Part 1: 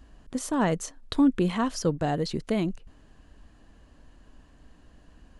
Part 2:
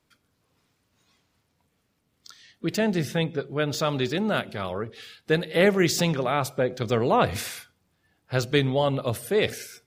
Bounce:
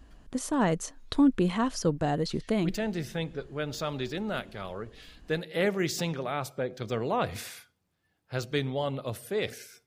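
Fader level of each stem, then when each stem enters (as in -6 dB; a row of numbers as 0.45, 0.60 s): -1.0, -7.5 dB; 0.00, 0.00 s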